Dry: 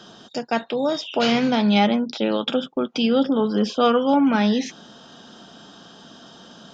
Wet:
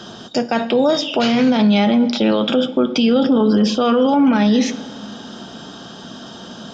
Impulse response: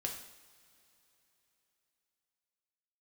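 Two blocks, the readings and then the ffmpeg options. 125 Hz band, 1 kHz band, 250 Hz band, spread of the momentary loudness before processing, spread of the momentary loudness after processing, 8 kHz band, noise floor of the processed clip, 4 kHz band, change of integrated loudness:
+5.5 dB, +2.0 dB, +6.0 dB, 8 LU, 21 LU, no reading, -36 dBFS, +4.0 dB, +5.0 dB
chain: -filter_complex "[0:a]asplit=2[s0][s1];[1:a]atrim=start_sample=2205,asetrate=48510,aresample=44100,lowshelf=f=490:g=10[s2];[s1][s2]afir=irnorm=-1:irlink=0,volume=0.376[s3];[s0][s3]amix=inputs=2:normalize=0,alimiter=limit=0.2:level=0:latency=1:release=25,volume=2.11"

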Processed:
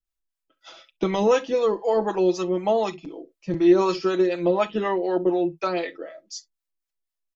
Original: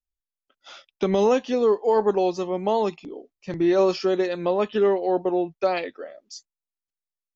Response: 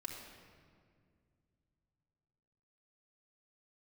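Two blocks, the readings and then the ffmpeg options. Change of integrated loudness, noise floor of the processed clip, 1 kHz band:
0.0 dB, under -85 dBFS, -0.5 dB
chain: -filter_complex "[0:a]aecho=1:1:6.1:0.74,asplit=2[s0][s1];[1:a]atrim=start_sample=2205,atrim=end_sample=3087[s2];[s1][s2]afir=irnorm=-1:irlink=0,volume=0.794[s3];[s0][s3]amix=inputs=2:normalize=0,acrossover=split=580[s4][s5];[s4]aeval=exprs='val(0)*(1-0.7/2+0.7/2*cos(2*PI*4*n/s))':c=same[s6];[s5]aeval=exprs='val(0)*(1-0.7/2-0.7/2*cos(2*PI*4*n/s))':c=same[s7];[s6][s7]amix=inputs=2:normalize=0"

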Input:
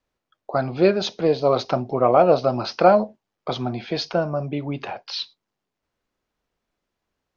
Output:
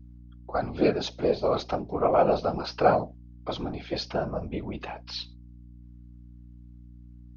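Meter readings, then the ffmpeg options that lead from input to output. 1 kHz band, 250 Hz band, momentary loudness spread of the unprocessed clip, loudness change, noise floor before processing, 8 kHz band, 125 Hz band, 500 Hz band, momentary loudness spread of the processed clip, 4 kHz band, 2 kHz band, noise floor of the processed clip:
-5.5 dB, -6.0 dB, 14 LU, -6.0 dB, -83 dBFS, no reading, -6.5 dB, -6.5 dB, 14 LU, -6.5 dB, -5.5 dB, -48 dBFS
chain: -af "afftfilt=real='hypot(re,im)*cos(2*PI*random(0))':imag='hypot(re,im)*sin(2*PI*random(1))':win_size=512:overlap=0.75,aeval=exprs='val(0)+0.00501*(sin(2*PI*60*n/s)+sin(2*PI*2*60*n/s)/2+sin(2*PI*3*60*n/s)/3+sin(2*PI*4*60*n/s)/4+sin(2*PI*5*60*n/s)/5)':c=same"

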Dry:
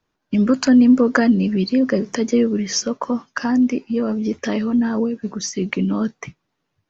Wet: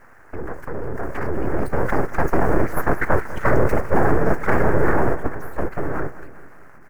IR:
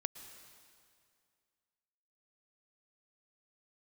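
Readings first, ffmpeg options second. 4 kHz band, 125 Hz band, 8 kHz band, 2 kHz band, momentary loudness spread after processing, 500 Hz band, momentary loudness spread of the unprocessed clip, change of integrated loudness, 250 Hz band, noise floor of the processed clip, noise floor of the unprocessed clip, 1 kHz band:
under -20 dB, +3.5 dB, no reading, +2.0 dB, 12 LU, +1.0 dB, 11 LU, -3.5 dB, -10.5 dB, -44 dBFS, -75 dBFS, +6.5 dB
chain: -filter_complex "[0:a]aeval=exprs='val(0)+0.5*0.075*sgn(val(0))':c=same,equalizer=f=3500:w=2.3:g=-13.5,agate=range=0.224:threshold=0.112:ratio=16:detection=peak,afftfilt=real='hypot(re,im)*cos(2*PI*random(0))':imag='hypot(re,im)*sin(2*PI*random(1))':win_size=512:overlap=0.75,acrossover=split=170|3000[s0][s1][s2];[s1]acompressor=threshold=0.0447:ratio=6[s3];[s0][s3][s2]amix=inputs=3:normalize=0,alimiter=limit=0.0841:level=0:latency=1:release=36,dynaudnorm=f=200:g=17:m=5.01,aeval=exprs='abs(val(0))':c=same,highshelf=f=2400:t=q:w=3:g=-12.5,aecho=1:1:197|394|591|788|985:0.15|0.0778|0.0405|0.021|0.0109,volume=1.19"

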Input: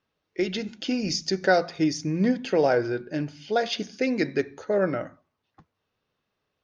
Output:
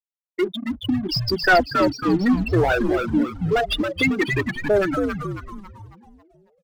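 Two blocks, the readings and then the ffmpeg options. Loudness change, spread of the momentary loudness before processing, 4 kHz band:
+4.5 dB, 9 LU, +5.0 dB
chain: -filter_complex "[0:a]highpass=240,equalizer=f=530:t=o:w=0.65:g=-13.5,afftfilt=real='re*gte(hypot(re,im),0.126)':imag='im*gte(hypot(re,im),0.126)':win_size=1024:overlap=0.75,asplit=2[s0][s1];[s1]highpass=f=720:p=1,volume=15.8,asoftclip=type=tanh:threshold=0.266[s2];[s0][s2]amix=inputs=2:normalize=0,lowpass=f=2700:p=1,volume=0.501,asplit=2[s3][s4];[s4]acrusher=bits=4:mix=0:aa=0.5,volume=0.316[s5];[s3][s5]amix=inputs=2:normalize=0,aphaser=in_gain=1:out_gain=1:delay=3.7:decay=0.41:speed=0.64:type=sinusoidal,asplit=2[s6][s7];[s7]asplit=6[s8][s9][s10][s11][s12][s13];[s8]adelay=274,afreqshift=-130,volume=0.562[s14];[s9]adelay=548,afreqshift=-260,volume=0.26[s15];[s10]adelay=822,afreqshift=-390,volume=0.119[s16];[s11]adelay=1096,afreqshift=-520,volume=0.055[s17];[s12]adelay=1370,afreqshift=-650,volume=0.0251[s18];[s13]adelay=1644,afreqshift=-780,volume=0.0116[s19];[s14][s15][s16][s17][s18][s19]amix=inputs=6:normalize=0[s20];[s6][s20]amix=inputs=2:normalize=0,volume=0.841"

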